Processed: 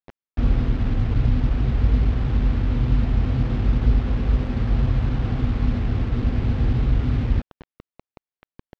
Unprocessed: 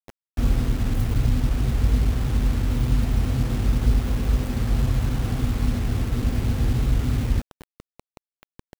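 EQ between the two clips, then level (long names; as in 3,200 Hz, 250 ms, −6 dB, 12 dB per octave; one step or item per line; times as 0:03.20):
elliptic low-pass filter 8,400 Hz, stop band 40 dB
high-frequency loss of the air 240 metres
+2.5 dB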